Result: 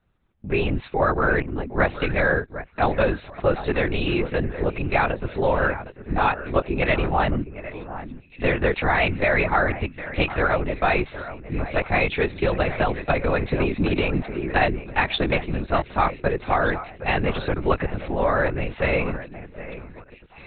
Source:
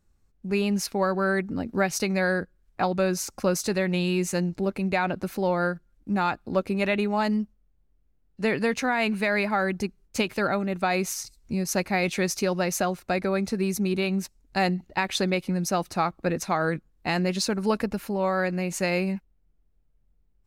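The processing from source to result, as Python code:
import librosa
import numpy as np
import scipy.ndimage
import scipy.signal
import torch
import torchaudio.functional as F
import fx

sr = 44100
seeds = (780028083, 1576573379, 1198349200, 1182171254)

y = fx.low_shelf(x, sr, hz=170.0, db=-11.5)
y = fx.echo_alternate(y, sr, ms=762, hz=2300.0, feedback_pct=57, wet_db=-13.0)
y = fx.lpc_vocoder(y, sr, seeds[0], excitation='whisper', order=10)
y = fx.band_squash(y, sr, depth_pct=100, at=(12.42, 14.61))
y = F.gain(torch.from_numpy(y), 5.5).numpy()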